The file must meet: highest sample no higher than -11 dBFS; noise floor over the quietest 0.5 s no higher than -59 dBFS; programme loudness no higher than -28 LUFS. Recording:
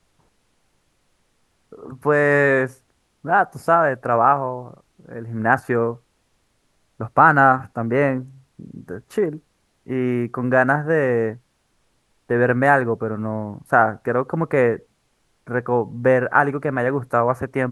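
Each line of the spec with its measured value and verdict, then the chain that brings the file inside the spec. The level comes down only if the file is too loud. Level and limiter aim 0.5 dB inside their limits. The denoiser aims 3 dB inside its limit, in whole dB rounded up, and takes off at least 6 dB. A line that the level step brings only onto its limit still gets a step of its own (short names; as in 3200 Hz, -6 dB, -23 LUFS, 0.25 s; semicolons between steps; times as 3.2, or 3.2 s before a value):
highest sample -1.5 dBFS: fail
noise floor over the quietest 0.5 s -66 dBFS: OK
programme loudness -19.5 LUFS: fail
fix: gain -9 dB; limiter -11.5 dBFS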